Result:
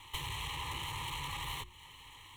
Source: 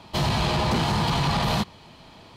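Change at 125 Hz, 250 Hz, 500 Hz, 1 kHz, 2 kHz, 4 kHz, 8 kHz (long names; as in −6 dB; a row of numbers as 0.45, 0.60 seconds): −20.5, −28.0, −26.5, −16.0, −11.5, −11.5, −9.0 decibels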